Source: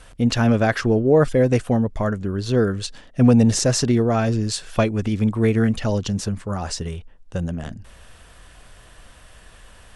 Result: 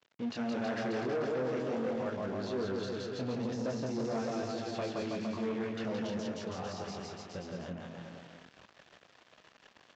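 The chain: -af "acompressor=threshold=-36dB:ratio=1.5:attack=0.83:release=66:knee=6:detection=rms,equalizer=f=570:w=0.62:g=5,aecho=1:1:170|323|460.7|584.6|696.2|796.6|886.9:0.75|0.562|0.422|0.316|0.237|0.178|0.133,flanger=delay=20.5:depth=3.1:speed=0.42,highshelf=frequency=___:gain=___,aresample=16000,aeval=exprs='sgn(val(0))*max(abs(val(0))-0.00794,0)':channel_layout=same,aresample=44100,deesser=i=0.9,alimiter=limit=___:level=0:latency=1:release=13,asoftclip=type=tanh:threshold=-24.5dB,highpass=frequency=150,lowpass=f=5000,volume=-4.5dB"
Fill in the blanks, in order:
2300, 4.5, -15.5dB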